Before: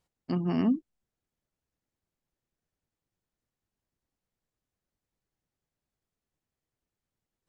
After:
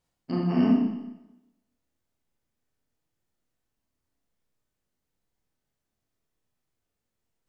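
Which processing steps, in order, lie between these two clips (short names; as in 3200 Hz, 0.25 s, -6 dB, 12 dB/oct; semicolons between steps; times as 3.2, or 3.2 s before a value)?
Schroeder reverb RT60 0.94 s, combs from 25 ms, DRR -4 dB; gain -1.5 dB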